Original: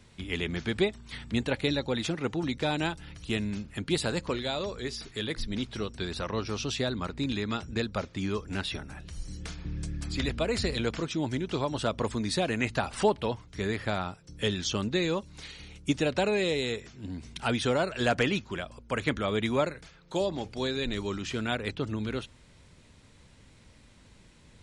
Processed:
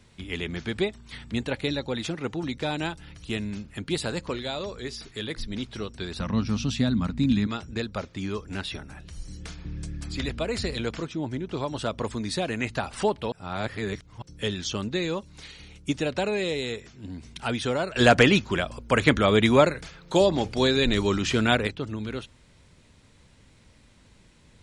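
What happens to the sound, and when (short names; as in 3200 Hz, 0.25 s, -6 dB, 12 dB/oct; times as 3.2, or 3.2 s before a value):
6.2–7.47 resonant low shelf 300 Hz +7 dB, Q 3
11.07–11.57 high shelf 2100 Hz -8.5 dB
13.32–14.22 reverse
17.96–21.67 gain +9 dB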